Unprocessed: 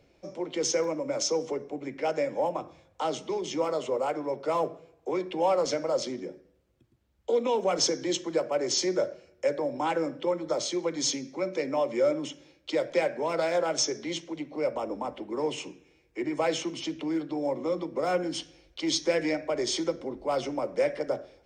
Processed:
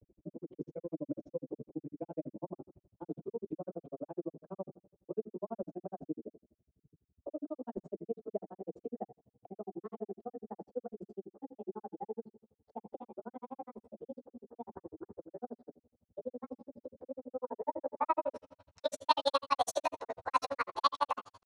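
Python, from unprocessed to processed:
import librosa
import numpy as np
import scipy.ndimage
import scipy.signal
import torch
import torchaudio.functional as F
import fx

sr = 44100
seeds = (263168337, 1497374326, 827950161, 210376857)

y = fx.pitch_glide(x, sr, semitones=11.5, runs='starting unshifted')
y = fx.granulator(y, sr, seeds[0], grain_ms=51.0, per_s=12.0, spray_ms=24.0, spread_st=0)
y = fx.filter_sweep_lowpass(y, sr, from_hz=280.0, to_hz=6100.0, start_s=17.2, end_s=19.39, q=1.1)
y = y * librosa.db_to_amplitude(3.5)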